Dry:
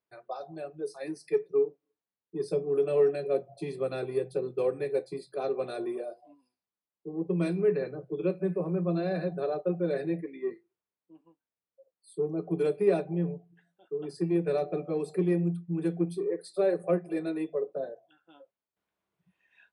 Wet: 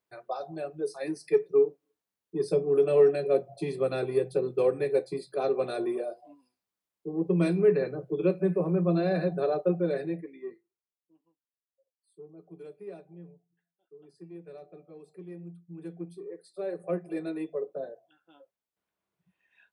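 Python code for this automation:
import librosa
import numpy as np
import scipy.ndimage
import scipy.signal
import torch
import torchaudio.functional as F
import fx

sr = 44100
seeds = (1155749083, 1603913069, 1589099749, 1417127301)

y = fx.gain(x, sr, db=fx.line((9.69, 3.5), (10.5, -7.0), (12.27, -18.0), (15.21, -18.0), (15.95, -10.5), (16.52, -10.5), (17.06, -2.0)))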